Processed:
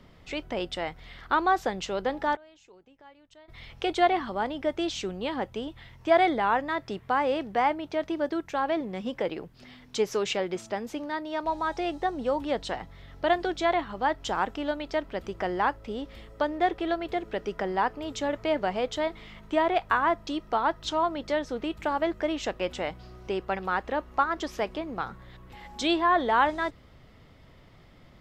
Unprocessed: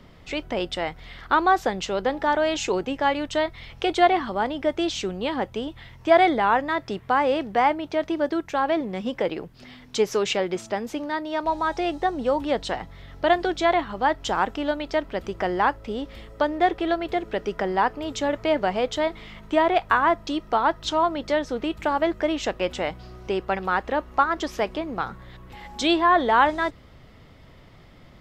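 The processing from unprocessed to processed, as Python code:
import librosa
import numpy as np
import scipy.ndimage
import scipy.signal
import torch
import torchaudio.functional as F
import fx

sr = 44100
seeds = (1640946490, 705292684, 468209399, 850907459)

y = fx.gate_flip(x, sr, shuts_db=-21.0, range_db=-26, at=(2.35, 3.48), fade=0.02)
y = y * librosa.db_to_amplitude(-4.5)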